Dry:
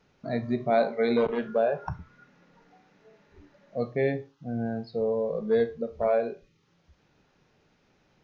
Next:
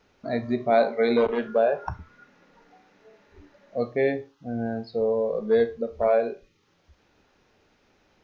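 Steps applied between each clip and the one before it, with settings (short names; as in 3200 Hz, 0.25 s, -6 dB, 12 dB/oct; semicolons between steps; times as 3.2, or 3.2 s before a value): bell 150 Hz -11.5 dB 0.56 oct; gain +3.5 dB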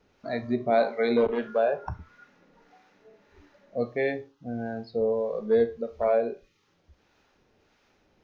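harmonic tremolo 1.6 Hz, depth 50%, crossover 630 Hz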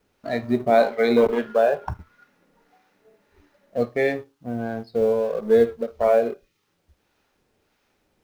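G.711 law mismatch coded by A; gain +6 dB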